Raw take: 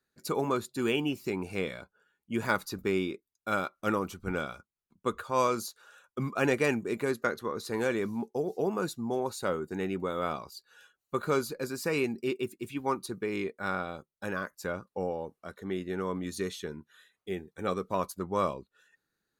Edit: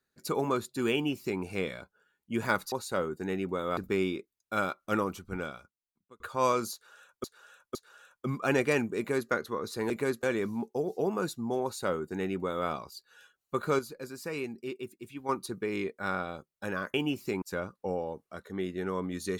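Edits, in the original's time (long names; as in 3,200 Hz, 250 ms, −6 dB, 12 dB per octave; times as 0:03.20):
0:00.93–0:01.41: duplicate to 0:14.54
0:03.96–0:05.15: fade out
0:05.68–0:06.19: repeat, 3 plays
0:06.91–0:07.24: duplicate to 0:07.83
0:09.23–0:10.28: duplicate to 0:02.72
0:11.39–0:12.89: clip gain −6.5 dB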